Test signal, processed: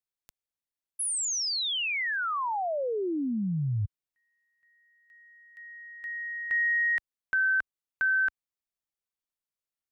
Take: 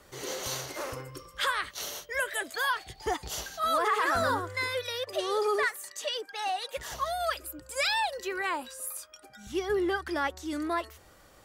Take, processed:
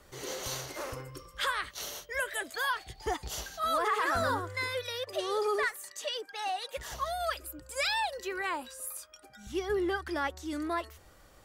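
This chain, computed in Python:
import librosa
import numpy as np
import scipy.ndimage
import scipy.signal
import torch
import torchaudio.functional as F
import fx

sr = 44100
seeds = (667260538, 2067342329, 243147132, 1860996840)

y = fx.low_shelf(x, sr, hz=69.0, db=8.0)
y = y * 10.0 ** (-2.5 / 20.0)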